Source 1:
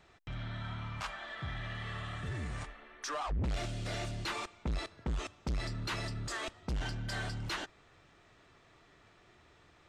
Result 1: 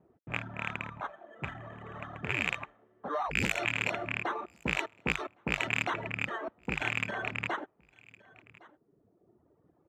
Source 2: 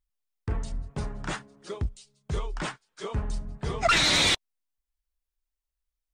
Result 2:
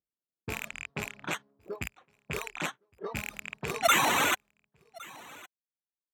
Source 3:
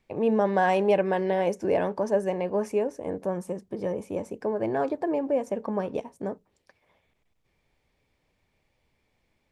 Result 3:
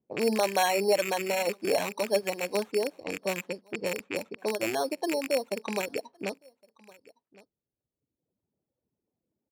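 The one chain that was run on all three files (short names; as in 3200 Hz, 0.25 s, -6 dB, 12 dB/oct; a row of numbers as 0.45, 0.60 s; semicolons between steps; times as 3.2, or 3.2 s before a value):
rattling part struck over -36 dBFS, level -20 dBFS; sample-and-hold 9×; low-pass opened by the level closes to 380 Hz, open at -25 dBFS; Bessel high-pass 200 Hz, order 2; echo 1.112 s -22 dB; reverb removal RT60 1.4 s; normalise peaks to -12 dBFS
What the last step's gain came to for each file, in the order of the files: +7.5, -0.5, -1.0 dB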